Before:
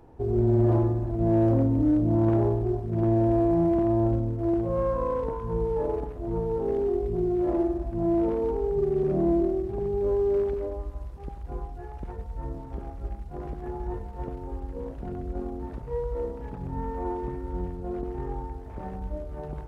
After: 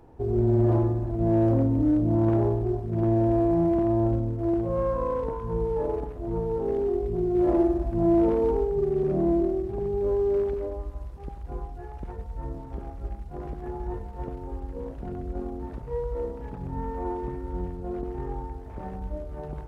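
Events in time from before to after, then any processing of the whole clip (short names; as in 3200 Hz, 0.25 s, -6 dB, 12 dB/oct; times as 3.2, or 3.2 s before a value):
7.35–8.64 gain +3.5 dB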